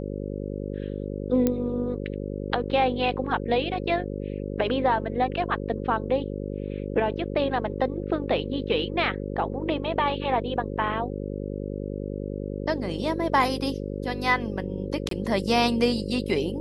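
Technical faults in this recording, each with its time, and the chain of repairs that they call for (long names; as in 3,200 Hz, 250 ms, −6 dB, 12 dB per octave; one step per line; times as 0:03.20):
mains buzz 50 Hz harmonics 11 −32 dBFS
0:01.47: click −10 dBFS
0:15.09–0:15.11: drop-out 23 ms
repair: click removal
hum removal 50 Hz, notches 11
repair the gap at 0:15.09, 23 ms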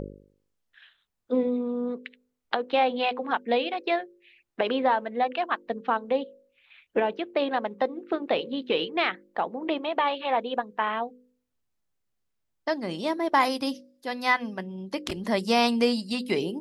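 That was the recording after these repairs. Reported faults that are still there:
none of them is left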